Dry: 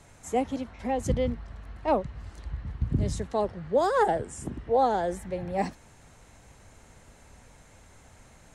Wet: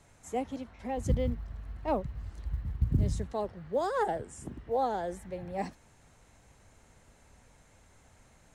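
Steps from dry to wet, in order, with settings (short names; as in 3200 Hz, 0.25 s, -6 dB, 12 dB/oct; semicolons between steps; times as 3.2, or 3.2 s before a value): 0.97–3.33 low shelf 180 Hz +8.5 dB; short-mantissa float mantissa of 6-bit; gain -6.5 dB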